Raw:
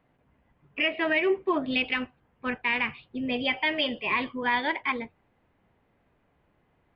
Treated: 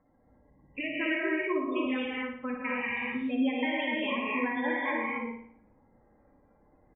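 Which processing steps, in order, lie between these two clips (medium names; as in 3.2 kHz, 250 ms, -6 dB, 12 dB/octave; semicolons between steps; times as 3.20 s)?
spectral gate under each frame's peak -15 dB strong; comb 3.7 ms, depth 43%; compression 3:1, threshold -33 dBFS, peak gain reduction 10 dB; distance through air 300 m; on a send: flutter echo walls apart 9.7 m, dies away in 0.57 s; on the sum: gated-style reverb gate 300 ms rising, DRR -3.5 dB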